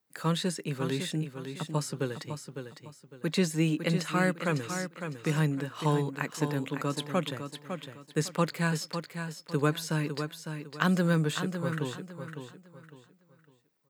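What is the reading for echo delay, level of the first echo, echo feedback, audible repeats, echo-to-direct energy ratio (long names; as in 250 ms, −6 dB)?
555 ms, −8.0 dB, 30%, 3, −7.5 dB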